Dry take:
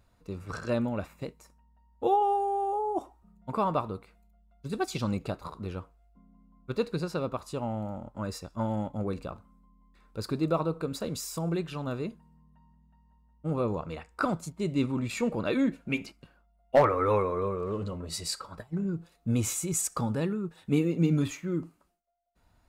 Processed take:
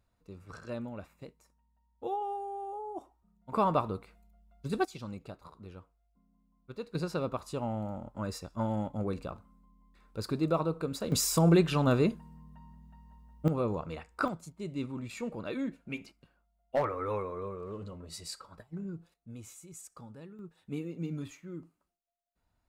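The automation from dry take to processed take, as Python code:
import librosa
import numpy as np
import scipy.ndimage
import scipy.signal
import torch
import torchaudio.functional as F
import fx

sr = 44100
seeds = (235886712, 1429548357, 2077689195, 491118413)

y = fx.gain(x, sr, db=fx.steps((0.0, -10.0), (3.52, 0.5), (4.85, -11.5), (6.95, -1.5), (11.12, 8.0), (13.48, -2.0), (14.28, -8.5), (19.14, -19.0), (20.39, -12.0)))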